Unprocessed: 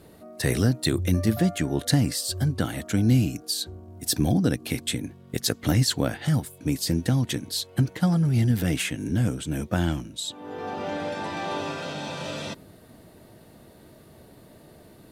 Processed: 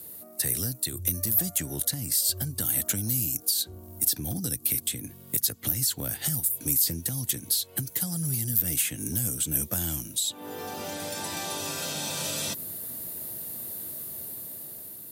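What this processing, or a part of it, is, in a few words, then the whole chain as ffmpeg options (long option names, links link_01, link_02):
FM broadcast chain: -filter_complex "[0:a]highpass=61,dynaudnorm=framelen=510:gausssize=5:maxgain=6.5dB,acrossover=split=120|4500[link_01][link_02][link_03];[link_01]acompressor=threshold=-27dB:ratio=4[link_04];[link_02]acompressor=threshold=-29dB:ratio=4[link_05];[link_03]acompressor=threshold=-40dB:ratio=4[link_06];[link_04][link_05][link_06]amix=inputs=3:normalize=0,aemphasis=mode=production:type=50fm,alimiter=limit=-16.5dB:level=0:latency=1:release=262,asoftclip=type=hard:threshold=-19.5dB,lowpass=frequency=15000:width=0.5412,lowpass=frequency=15000:width=1.3066,aemphasis=mode=production:type=50fm,volume=-5.5dB"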